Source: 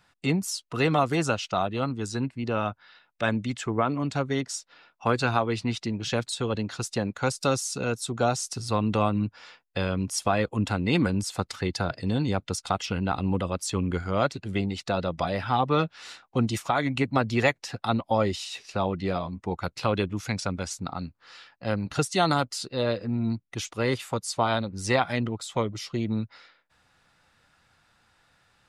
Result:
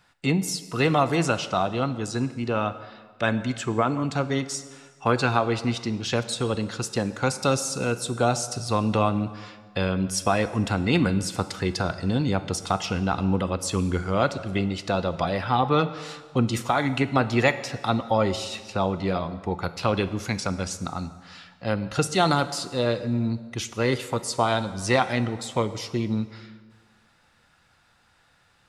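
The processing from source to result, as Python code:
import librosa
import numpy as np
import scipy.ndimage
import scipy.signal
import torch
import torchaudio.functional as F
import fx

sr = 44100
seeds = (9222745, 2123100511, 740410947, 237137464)

y = fx.rev_plate(x, sr, seeds[0], rt60_s=1.6, hf_ratio=0.8, predelay_ms=0, drr_db=11.5)
y = F.gain(torch.from_numpy(y), 2.0).numpy()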